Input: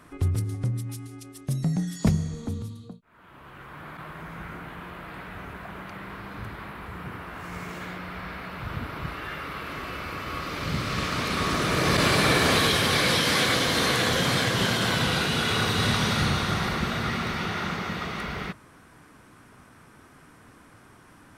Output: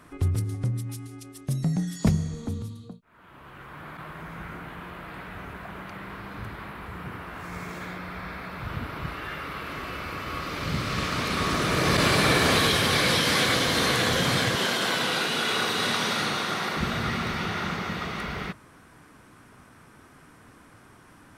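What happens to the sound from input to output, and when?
7.44–8.64 notch 2900 Hz
14.55–16.77 HPF 270 Hz

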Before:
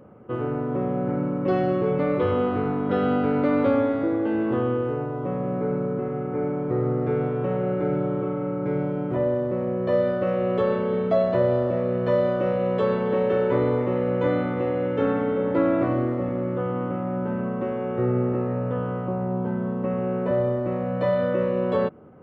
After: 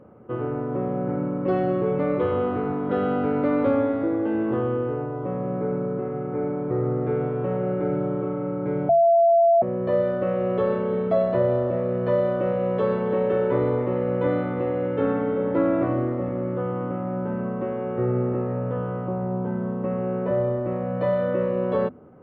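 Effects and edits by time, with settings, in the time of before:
8.89–9.62 bleep 677 Hz -13 dBFS
whole clip: high shelf 3500 Hz -11.5 dB; notches 50/100/150/200/250 Hz

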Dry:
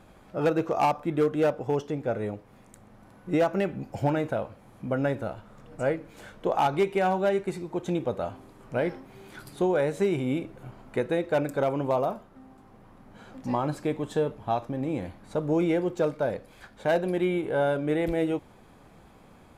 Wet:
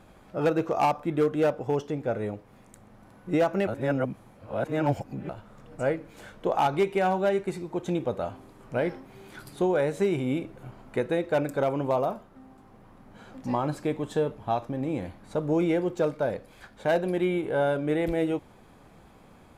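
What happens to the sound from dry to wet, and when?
3.67–5.29 reverse

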